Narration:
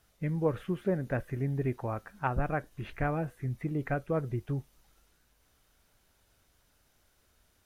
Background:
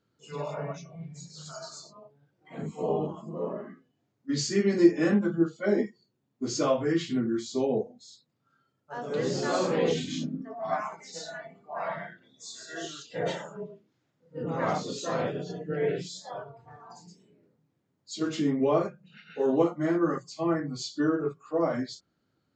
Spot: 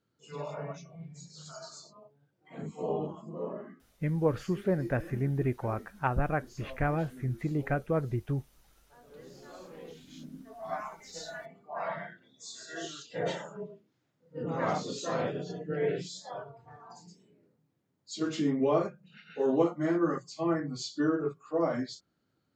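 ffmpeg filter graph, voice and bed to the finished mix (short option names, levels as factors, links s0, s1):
-filter_complex "[0:a]adelay=3800,volume=1.19[s0];[1:a]volume=5.96,afade=t=out:st=3.78:d=0.32:silence=0.133352,afade=t=in:st=10.01:d=1.3:silence=0.105925[s1];[s0][s1]amix=inputs=2:normalize=0"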